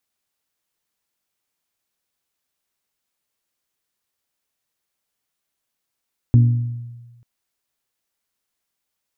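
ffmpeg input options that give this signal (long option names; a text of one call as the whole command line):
ffmpeg -f lavfi -i "aevalsrc='0.447*pow(10,-3*t/1.28)*sin(2*PI*119*t)+0.141*pow(10,-3*t/0.788)*sin(2*PI*238*t)+0.0447*pow(10,-3*t/0.694)*sin(2*PI*285.6*t)+0.0141*pow(10,-3*t/0.593)*sin(2*PI*357*t)+0.00447*pow(10,-3*t/0.485)*sin(2*PI*476*t)':duration=0.89:sample_rate=44100" out.wav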